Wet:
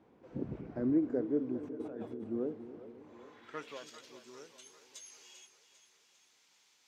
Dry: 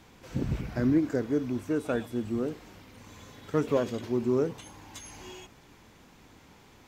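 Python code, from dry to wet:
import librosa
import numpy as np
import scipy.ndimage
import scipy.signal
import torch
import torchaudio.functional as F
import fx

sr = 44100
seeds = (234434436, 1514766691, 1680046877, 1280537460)

y = fx.over_compress(x, sr, threshold_db=-37.0, ratio=-1.0, at=(1.63, 2.24))
y = fx.filter_sweep_bandpass(y, sr, from_hz=400.0, to_hz=5700.0, start_s=3.0, end_s=3.88, q=1.0)
y = fx.echo_split(y, sr, split_hz=420.0, low_ms=273, high_ms=397, feedback_pct=52, wet_db=-12)
y = y * librosa.db_to_amplitude(-3.5)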